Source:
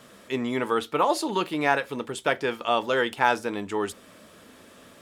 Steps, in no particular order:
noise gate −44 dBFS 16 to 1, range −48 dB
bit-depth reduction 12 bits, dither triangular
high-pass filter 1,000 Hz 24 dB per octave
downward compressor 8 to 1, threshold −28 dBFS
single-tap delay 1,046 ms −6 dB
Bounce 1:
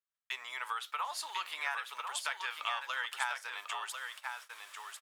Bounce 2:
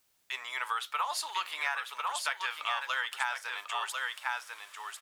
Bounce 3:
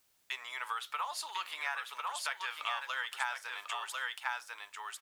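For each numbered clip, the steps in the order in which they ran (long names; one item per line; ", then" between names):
bit-depth reduction, then downward compressor, then single-tap delay, then noise gate, then high-pass filter
single-tap delay, then noise gate, then high-pass filter, then downward compressor, then bit-depth reduction
noise gate, then single-tap delay, then downward compressor, then high-pass filter, then bit-depth reduction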